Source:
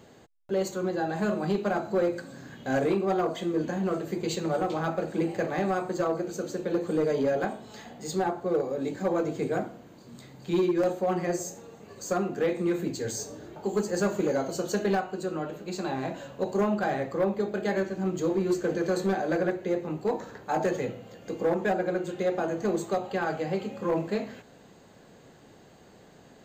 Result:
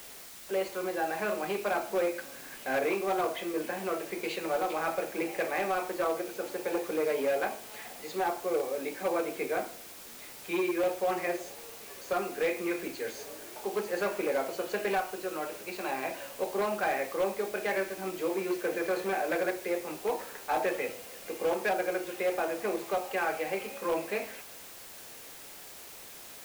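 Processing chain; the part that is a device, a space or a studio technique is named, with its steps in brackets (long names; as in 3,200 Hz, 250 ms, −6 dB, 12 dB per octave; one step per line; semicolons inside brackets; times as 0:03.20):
0:06.40–0:06.84: parametric band 830 Hz +9 dB 0.38 octaves
drive-through speaker (band-pass filter 450–3,000 Hz; parametric band 2,400 Hz +10.5 dB 0.47 octaves; hard clipping −22.5 dBFS, distortion −20 dB; white noise bed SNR 15 dB)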